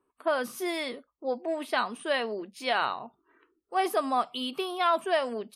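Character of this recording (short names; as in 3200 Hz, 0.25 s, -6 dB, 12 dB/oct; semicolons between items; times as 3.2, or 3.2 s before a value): noise floor -78 dBFS; spectral tilt 0.0 dB/oct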